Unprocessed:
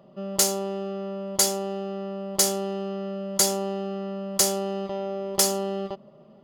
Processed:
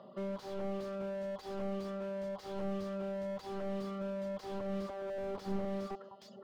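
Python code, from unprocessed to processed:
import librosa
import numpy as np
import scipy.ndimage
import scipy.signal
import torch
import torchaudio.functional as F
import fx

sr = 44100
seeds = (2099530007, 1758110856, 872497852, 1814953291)

y = fx.cabinet(x, sr, low_hz=140.0, low_slope=12, high_hz=4700.0, hz=(150.0, 310.0, 1100.0, 2500.0, 3800.0), db=(-10, -10, 4, -10, 5))
y = fx.echo_alternate(y, sr, ms=206, hz=1700.0, feedback_pct=57, wet_db=-11.5)
y = fx.over_compress(y, sr, threshold_db=-31.0, ratio=-0.5)
y = fx.dereverb_blind(y, sr, rt60_s=1.1)
y = fx.low_shelf(y, sr, hz=500.0, db=10.5, at=(5.18, 5.65))
y = fx.slew_limit(y, sr, full_power_hz=7.1)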